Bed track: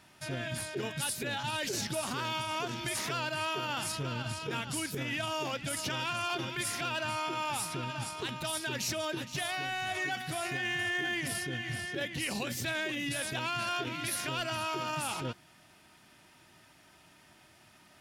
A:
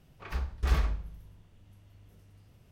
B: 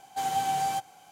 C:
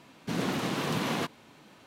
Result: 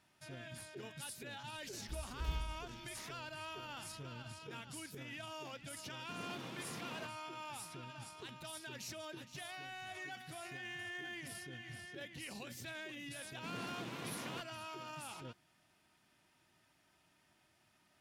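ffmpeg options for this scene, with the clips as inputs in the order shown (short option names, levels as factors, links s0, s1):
-filter_complex "[3:a]asplit=2[s0][s1];[0:a]volume=0.224[s2];[1:a]equalizer=f=1200:w=0.63:g=-13,atrim=end=2.71,asetpts=PTS-STARTPTS,volume=0.237,afade=t=in:d=0.004:c=hsin,afade=t=out:st=2.706:d=0.004:c=hsin,adelay=1570[s3];[s0]atrim=end=1.86,asetpts=PTS-STARTPTS,volume=0.126,afade=t=in:d=0.004:c=hsin,afade=t=out:st=1.856:d=0.004:c=hsin,adelay=256221S[s4];[s1]atrim=end=1.86,asetpts=PTS-STARTPTS,volume=0.158,afade=t=in:d=0.004:c=hsin,afade=t=out:st=1.856:d=0.004:c=hsin,adelay=13150[s5];[s2][s3][s4][s5]amix=inputs=4:normalize=0"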